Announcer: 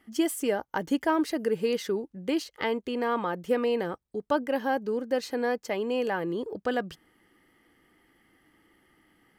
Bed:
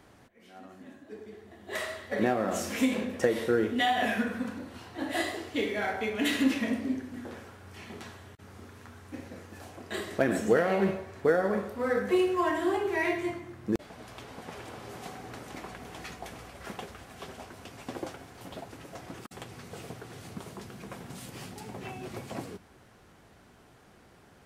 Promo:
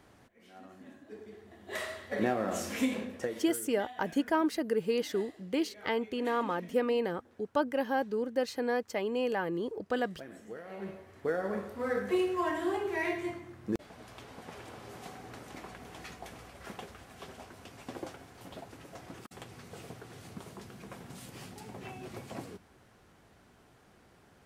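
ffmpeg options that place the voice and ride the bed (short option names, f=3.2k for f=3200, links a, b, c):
-filter_complex "[0:a]adelay=3250,volume=-3dB[a];[1:a]volume=14dB,afade=t=out:st=2.78:d=0.81:silence=0.125893,afade=t=in:st=10.63:d=1.14:silence=0.141254[b];[a][b]amix=inputs=2:normalize=0"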